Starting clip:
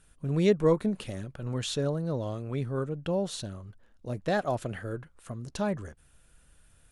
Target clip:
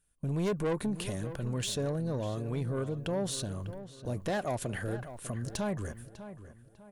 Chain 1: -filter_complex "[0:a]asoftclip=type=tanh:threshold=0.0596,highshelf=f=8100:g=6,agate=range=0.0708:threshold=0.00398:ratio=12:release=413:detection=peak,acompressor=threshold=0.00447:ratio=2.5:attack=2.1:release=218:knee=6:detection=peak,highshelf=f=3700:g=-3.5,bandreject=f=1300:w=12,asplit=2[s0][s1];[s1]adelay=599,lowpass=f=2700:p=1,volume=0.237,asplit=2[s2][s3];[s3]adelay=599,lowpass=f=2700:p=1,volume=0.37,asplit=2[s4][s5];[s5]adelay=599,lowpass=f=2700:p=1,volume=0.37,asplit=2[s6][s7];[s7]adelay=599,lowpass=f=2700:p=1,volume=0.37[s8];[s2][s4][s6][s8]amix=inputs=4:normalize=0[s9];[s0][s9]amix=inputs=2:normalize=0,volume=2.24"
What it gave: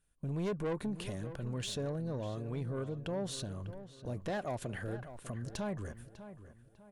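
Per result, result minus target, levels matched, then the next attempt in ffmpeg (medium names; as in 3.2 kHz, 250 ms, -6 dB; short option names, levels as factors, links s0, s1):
compression: peak gain reduction +3.5 dB; 8 kHz band -3.0 dB
-filter_complex "[0:a]asoftclip=type=tanh:threshold=0.0596,highshelf=f=8100:g=6,agate=range=0.0708:threshold=0.00398:ratio=12:release=413:detection=peak,acompressor=threshold=0.0106:ratio=2.5:attack=2.1:release=218:knee=6:detection=peak,highshelf=f=3700:g=-3.5,bandreject=f=1300:w=12,asplit=2[s0][s1];[s1]adelay=599,lowpass=f=2700:p=1,volume=0.237,asplit=2[s2][s3];[s3]adelay=599,lowpass=f=2700:p=1,volume=0.37,asplit=2[s4][s5];[s5]adelay=599,lowpass=f=2700:p=1,volume=0.37,asplit=2[s6][s7];[s7]adelay=599,lowpass=f=2700:p=1,volume=0.37[s8];[s2][s4][s6][s8]amix=inputs=4:normalize=0[s9];[s0][s9]amix=inputs=2:normalize=0,volume=2.24"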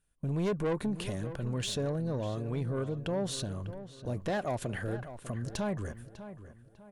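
8 kHz band -3.0 dB
-filter_complex "[0:a]asoftclip=type=tanh:threshold=0.0596,highshelf=f=8100:g=16.5,agate=range=0.0708:threshold=0.00398:ratio=12:release=413:detection=peak,acompressor=threshold=0.0106:ratio=2.5:attack=2.1:release=218:knee=6:detection=peak,highshelf=f=3700:g=-3.5,bandreject=f=1300:w=12,asplit=2[s0][s1];[s1]adelay=599,lowpass=f=2700:p=1,volume=0.237,asplit=2[s2][s3];[s3]adelay=599,lowpass=f=2700:p=1,volume=0.37,asplit=2[s4][s5];[s5]adelay=599,lowpass=f=2700:p=1,volume=0.37,asplit=2[s6][s7];[s7]adelay=599,lowpass=f=2700:p=1,volume=0.37[s8];[s2][s4][s6][s8]amix=inputs=4:normalize=0[s9];[s0][s9]amix=inputs=2:normalize=0,volume=2.24"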